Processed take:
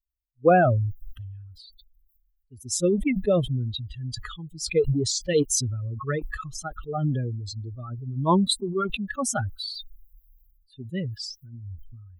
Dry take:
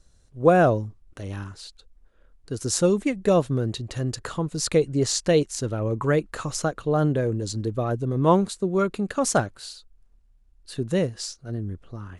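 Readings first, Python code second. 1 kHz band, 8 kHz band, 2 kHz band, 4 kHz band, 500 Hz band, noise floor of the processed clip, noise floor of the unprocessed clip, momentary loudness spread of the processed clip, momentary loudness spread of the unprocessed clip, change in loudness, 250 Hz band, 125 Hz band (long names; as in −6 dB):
−1.0 dB, 0.0 dB, −1.0 dB, +2.0 dB, −3.5 dB, −68 dBFS, −59 dBFS, 19 LU, 16 LU, −2.0 dB, −3.0 dB, −1.5 dB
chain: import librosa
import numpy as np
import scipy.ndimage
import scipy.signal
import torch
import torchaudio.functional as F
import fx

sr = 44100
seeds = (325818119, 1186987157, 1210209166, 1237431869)

y = fx.bin_expand(x, sr, power=3.0)
y = fx.sustainer(y, sr, db_per_s=30.0)
y = F.gain(torch.from_numpy(y), 2.0).numpy()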